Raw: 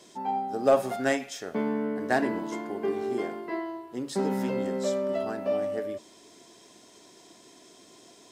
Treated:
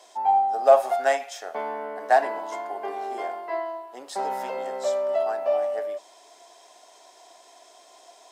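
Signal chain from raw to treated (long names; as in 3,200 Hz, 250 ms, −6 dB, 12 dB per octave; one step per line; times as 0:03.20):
high-pass with resonance 720 Hz, resonance Q 3.4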